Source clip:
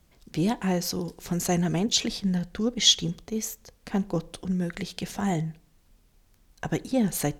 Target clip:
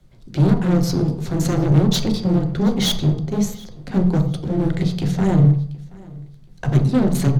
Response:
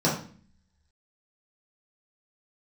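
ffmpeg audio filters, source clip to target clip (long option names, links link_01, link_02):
-filter_complex "[0:a]aeval=exprs='0.473*(cos(1*acos(clip(val(0)/0.473,-1,1)))-cos(1*PI/2))+0.0266*(cos(8*acos(clip(val(0)/0.473,-1,1)))-cos(8*PI/2))':channel_layout=same,highshelf=frequency=6400:gain=9.5,bandreject=frequency=50:width_type=h:width=6,bandreject=frequency=100:width_type=h:width=6,bandreject=frequency=150:width_type=h:width=6,bandreject=frequency=200:width_type=h:width=6,bandreject=frequency=250:width_type=h:width=6,bandreject=frequency=300:width_type=h:width=6,asplit=2[link_01][link_02];[link_02]acrusher=bits=5:mix=0:aa=0.000001,volume=-9dB[link_03];[link_01][link_03]amix=inputs=2:normalize=0,aemphasis=mode=reproduction:type=bsi,afreqshift=-13,asoftclip=type=hard:threshold=-19.5dB,aecho=1:1:727|1454:0.0708|0.0205,asplit=2[link_04][link_05];[1:a]atrim=start_sample=2205,afade=type=out:start_time=0.36:duration=0.01,atrim=end_sample=16317,asetrate=35721,aresample=44100[link_06];[link_05][link_06]afir=irnorm=-1:irlink=0,volume=-17.5dB[link_07];[link_04][link_07]amix=inputs=2:normalize=0"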